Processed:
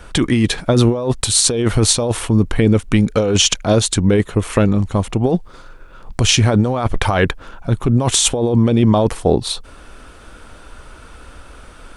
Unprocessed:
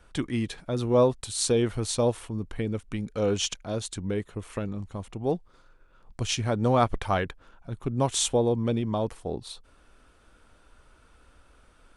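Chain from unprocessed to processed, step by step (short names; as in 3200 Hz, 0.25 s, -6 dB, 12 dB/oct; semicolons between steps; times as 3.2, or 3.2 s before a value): negative-ratio compressor -29 dBFS, ratio -1; maximiser +16.5 dB; gain -1 dB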